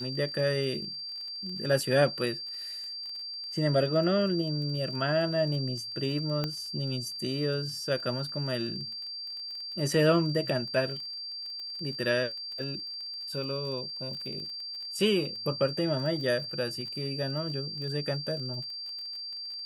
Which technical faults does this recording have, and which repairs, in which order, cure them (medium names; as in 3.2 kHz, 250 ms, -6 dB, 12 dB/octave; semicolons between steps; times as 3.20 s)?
crackle 23 per s -38 dBFS
whine 4.7 kHz -36 dBFS
6.44 s: pop -17 dBFS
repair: de-click; band-stop 4.7 kHz, Q 30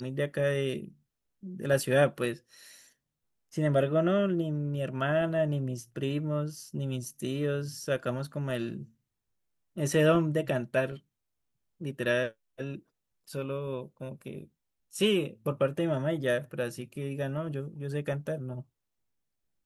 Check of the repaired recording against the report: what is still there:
nothing left